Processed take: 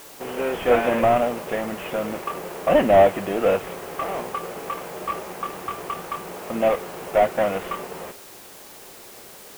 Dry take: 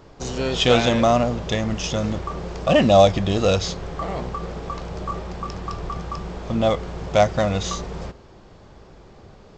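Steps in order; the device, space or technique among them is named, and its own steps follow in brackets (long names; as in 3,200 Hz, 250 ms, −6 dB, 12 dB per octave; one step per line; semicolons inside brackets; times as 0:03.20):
army field radio (band-pass filter 330–3,000 Hz; variable-slope delta modulation 16 kbit/s; white noise bed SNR 21 dB)
level +2.5 dB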